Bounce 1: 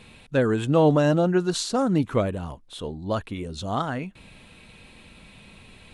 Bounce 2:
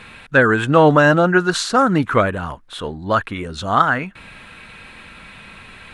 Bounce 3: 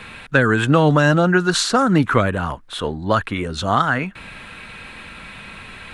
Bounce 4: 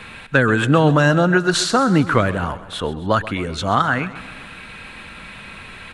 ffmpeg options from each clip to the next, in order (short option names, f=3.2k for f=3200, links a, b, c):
-af "equalizer=f=1.5k:t=o:w=1.3:g=14.5,volume=4dB"
-filter_complex "[0:a]acrossover=split=220|3000[a][b][c];[b]acompressor=threshold=-17dB:ratio=6[d];[a][d][c]amix=inputs=3:normalize=0,volume=3dB"
-af "aecho=1:1:131|262|393|524|655:0.158|0.0888|0.0497|0.0278|0.0156"